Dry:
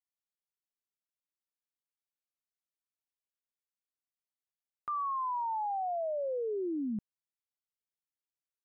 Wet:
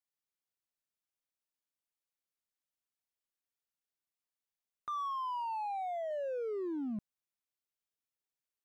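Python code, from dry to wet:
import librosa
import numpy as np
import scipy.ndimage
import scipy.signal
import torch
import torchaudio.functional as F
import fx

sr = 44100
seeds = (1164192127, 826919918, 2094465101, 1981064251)

p1 = fx.peak_eq(x, sr, hz=130.0, db=-8.5, octaves=2.3, at=(5.08, 6.11))
p2 = np.clip(p1, -10.0 ** (-39.0 / 20.0), 10.0 ** (-39.0 / 20.0))
p3 = p1 + (p2 * librosa.db_to_amplitude(-3.0))
y = p3 * librosa.db_to_amplitude(-5.5)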